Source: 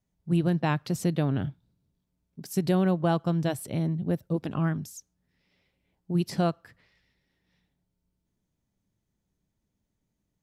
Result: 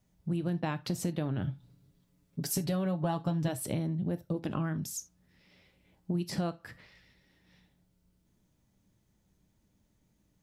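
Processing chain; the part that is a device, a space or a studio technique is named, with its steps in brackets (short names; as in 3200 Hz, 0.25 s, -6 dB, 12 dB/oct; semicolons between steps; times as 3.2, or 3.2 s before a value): serial compression, peaks first (compressor 5:1, threshold -33 dBFS, peak gain reduction 12 dB; compressor 1.5:1, threshold -45 dBFS, peak gain reduction 5.5 dB); 1.47–3.48 comb 7.1 ms, depth 73%; non-linear reverb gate 0.1 s falling, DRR 11 dB; gain +7.5 dB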